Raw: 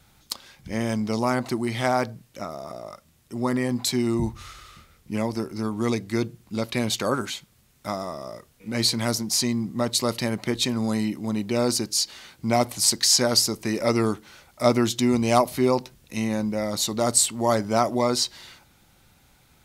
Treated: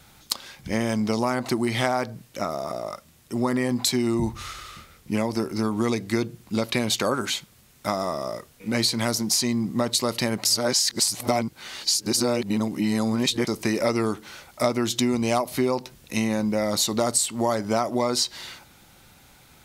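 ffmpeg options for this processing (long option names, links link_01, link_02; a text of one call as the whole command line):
ffmpeg -i in.wav -filter_complex "[0:a]asplit=3[link_01][link_02][link_03];[link_01]atrim=end=10.452[link_04];[link_02]atrim=start=10.448:end=13.472,asetpts=PTS-STARTPTS,areverse[link_05];[link_03]atrim=start=13.468[link_06];[link_04][link_05]acrossfade=duration=0.004:curve1=hsin:curve2=hsin[link_07];[link_07][link_06]acrossfade=duration=0.004:curve1=hsin:curve2=hsin,lowshelf=frequency=150:gain=-5,acompressor=threshold=-26dB:ratio=6,volume=6.5dB" out.wav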